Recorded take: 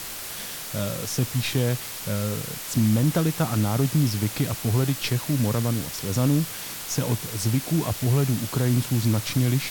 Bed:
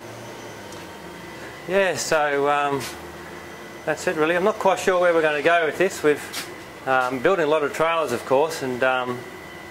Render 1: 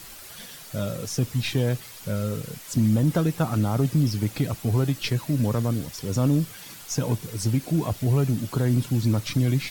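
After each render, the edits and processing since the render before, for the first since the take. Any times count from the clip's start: noise reduction 10 dB, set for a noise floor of -35 dBFS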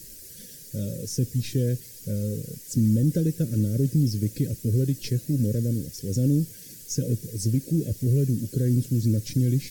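elliptic band-stop 560–1600 Hz, stop band 40 dB; high-order bell 1.6 kHz -12 dB 2.9 oct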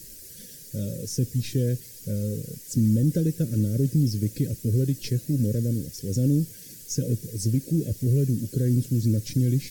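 no audible change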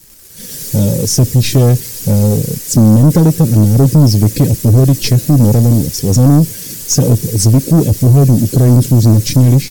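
level rider gain up to 15.5 dB; waveshaping leveller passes 2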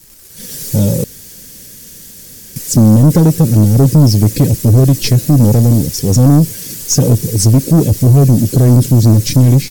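1.04–2.56 s: room tone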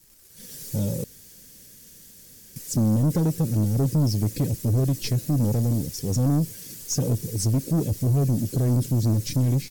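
trim -14 dB

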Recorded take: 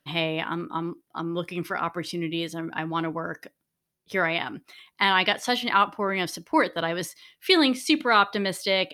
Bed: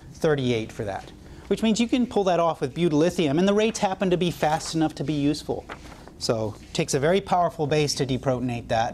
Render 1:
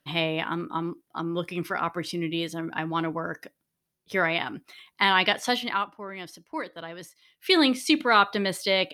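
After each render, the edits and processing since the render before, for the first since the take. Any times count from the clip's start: 5.49–7.61 s: dip -11.5 dB, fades 0.40 s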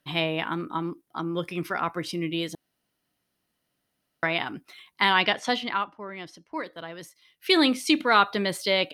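2.55–4.23 s: room tone; 5.22–6.64 s: distance through air 56 m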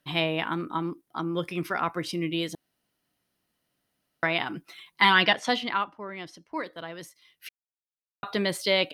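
4.49–5.33 s: comb 6 ms; 7.49–8.23 s: mute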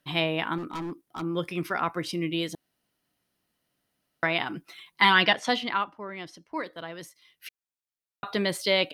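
0.58–1.22 s: hard clipper -30.5 dBFS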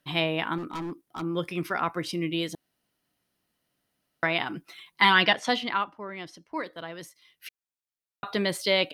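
no audible change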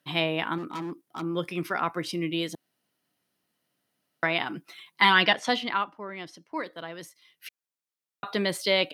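high-pass 120 Hz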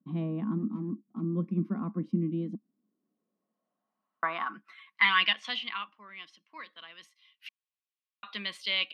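small resonant body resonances 210/1100 Hz, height 18 dB, ringing for 70 ms; band-pass sweep 220 Hz -> 2.8 kHz, 2.43–5.32 s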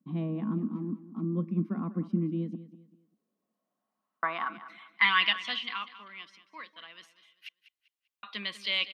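feedback delay 196 ms, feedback 33%, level -15 dB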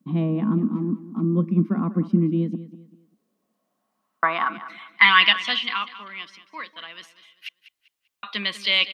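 trim +9.5 dB; peak limiter -1 dBFS, peak gain reduction 1 dB

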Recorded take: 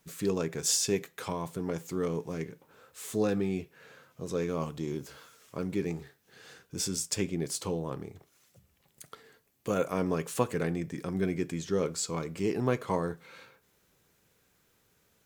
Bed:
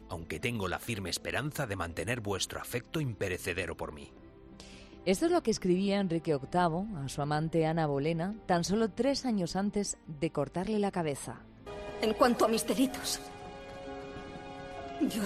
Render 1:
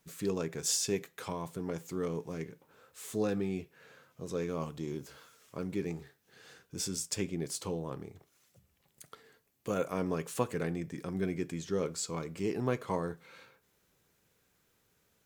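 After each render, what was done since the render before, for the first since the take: trim -3.5 dB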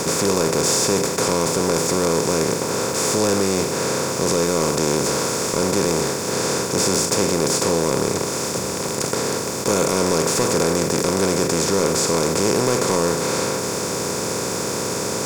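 spectral levelling over time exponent 0.2; waveshaping leveller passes 2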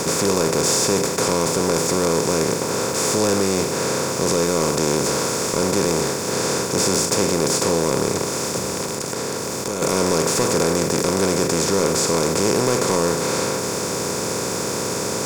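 8.83–9.82 s: compression, threshold -21 dBFS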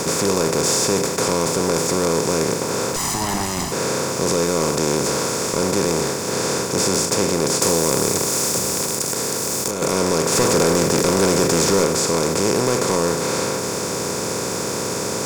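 2.96–3.72 s: comb filter that takes the minimum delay 1 ms; 7.62–9.71 s: treble shelf 6.5 kHz +11.5 dB; 10.32–11.85 s: waveshaping leveller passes 1

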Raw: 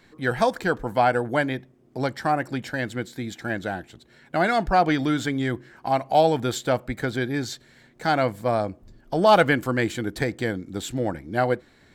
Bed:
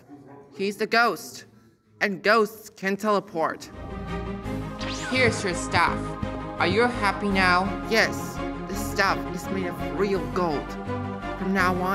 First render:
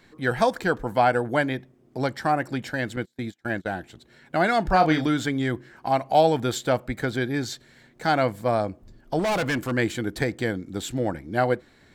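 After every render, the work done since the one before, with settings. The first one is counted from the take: 2.96–3.71 s: gate -34 dBFS, range -28 dB; 4.62–5.07 s: doubling 32 ms -6.5 dB; 9.19–9.72 s: hard clipper -22 dBFS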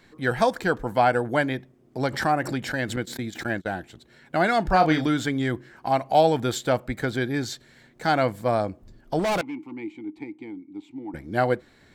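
2.03–3.53 s: swell ahead of each attack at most 89 dB/s; 9.41–11.14 s: vowel filter u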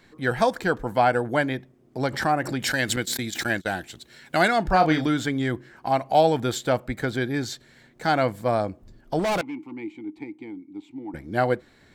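2.60–4.48 s: treble shelf 2.2 kHz +12 dB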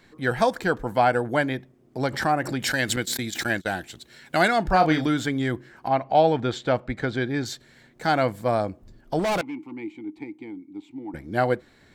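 5.87–7.44 s: low-pass 3.1 kHz -> 5.9 kHz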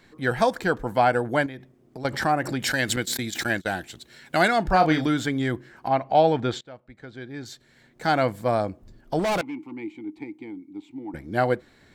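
1.46–2.05 s: compression 10:1, threshold -33 dBFS; 6.61–8.09 s: fade in quadratic, from -21 dB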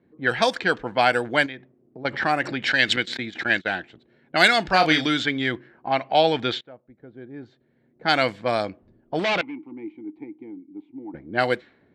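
level-controlled noise filter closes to 430 Hz, open at -16.5 dBFS; frequency weighting D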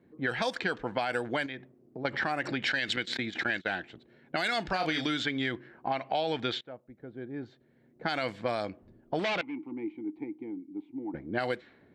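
peak limiter -11.5 dBFS, peak gain reduction 9.5 dB; compression 3:1, threshold -29 dBFS, peak gain reduction 9.5 dB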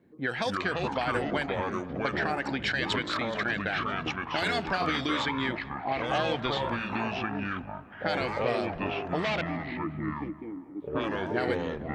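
ever faster or slower copies 205 ms, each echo -5 st, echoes 3; tape echo 217 ms, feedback 64%, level -16.5 dB, low-pass 2.1 kHz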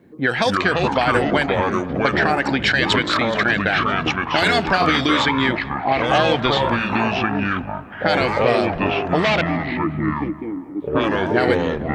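trim +11.5 dB; peak limiter -3 dBFS, peak gain reduction 1 dB

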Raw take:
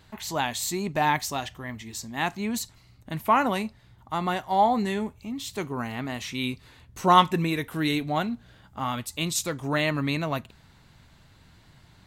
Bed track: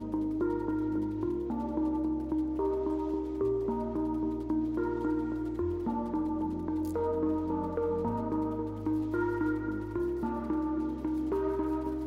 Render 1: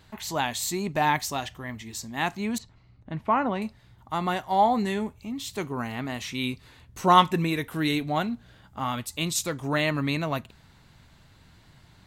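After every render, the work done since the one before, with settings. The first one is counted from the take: 2.58–3.62 s: tape spacing loss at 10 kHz 28 dB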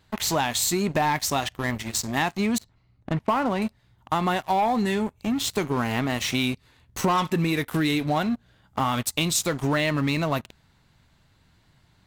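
waveshaping leveller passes 3; compression, threshold -21 dBFS, peak gain reduction 13 dB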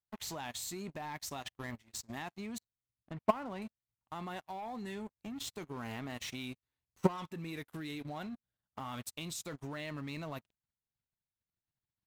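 level held to a coarse grid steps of 10 dB; upward expansion 2.5:1, over -44 dBFS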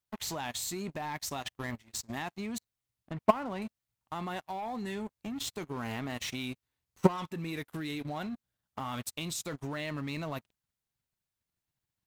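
trim +5 dB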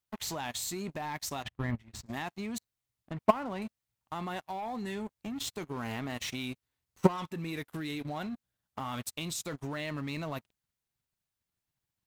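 1.43–2.06 s: tone controls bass +9 dB, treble -11 dB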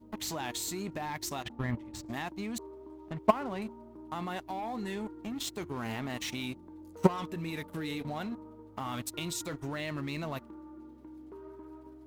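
add bed track -17 dB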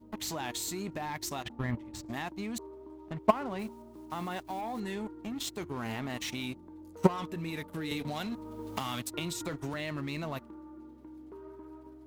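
3.59–4.82 s: block-companded coder 5-bit; 7.91–9.74 s: three bands compressed up and down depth 100%

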